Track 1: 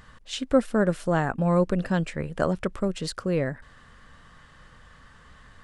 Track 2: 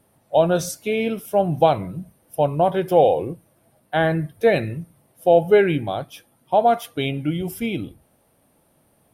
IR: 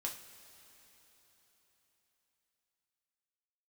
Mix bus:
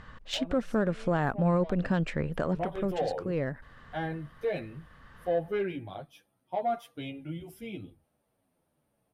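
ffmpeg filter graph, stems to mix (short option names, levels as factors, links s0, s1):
-filter_complex "[0:a]adynamicsmooth=sensitivity=2:basefreq=4200,volume=1.33[s0];[1:a]highshelf=f=7100:g=-7,asoftclip=type=tanh:threshold=0.447,asplit=2[s1][s2];[s2]adelay=9.5,afreqshift=-1.5[s3];[s1][s3]amix=inputs=2:normalize=1,volume=0.282,afade=t=in:st=2.28:d=0.39:silence=0.298538,asplit=2[s4][s5];[s5]apad=whole_len=248555[s6];[s0][s6]sidechaincompress=threshold=0.0158:ratio=8:attack=16:release=1130[s7];[s7][s4]amix=inputs=2:normalize=0,alimiter=limit=0.133:level=0:latency=1:release=155"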